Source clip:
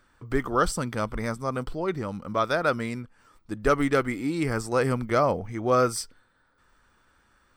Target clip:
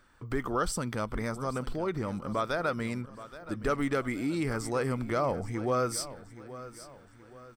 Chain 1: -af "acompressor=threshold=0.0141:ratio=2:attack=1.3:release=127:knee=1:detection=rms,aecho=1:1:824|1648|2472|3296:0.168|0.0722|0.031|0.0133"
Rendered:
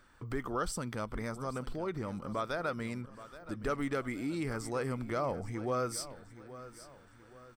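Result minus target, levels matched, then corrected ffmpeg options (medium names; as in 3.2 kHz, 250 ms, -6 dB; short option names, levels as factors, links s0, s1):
compression: peak gain reduction +5 dB
-af "acompressor=threshold=0.0422:ratio=2:attack=1.3:release=127:knee=1:detection=rms,aecho=1:1:824|1648|2472|3296:0.168|0.0722|0.031|0.0133"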